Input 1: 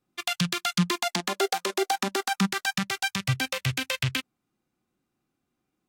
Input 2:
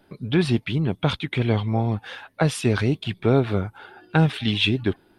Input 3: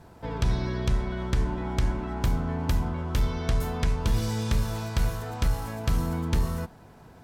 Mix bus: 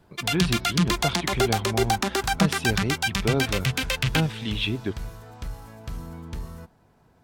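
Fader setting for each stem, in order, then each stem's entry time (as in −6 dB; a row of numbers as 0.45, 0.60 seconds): +2.5, −6.0, −9.5 decibels; 0.00, 0.00, 0.00 seconds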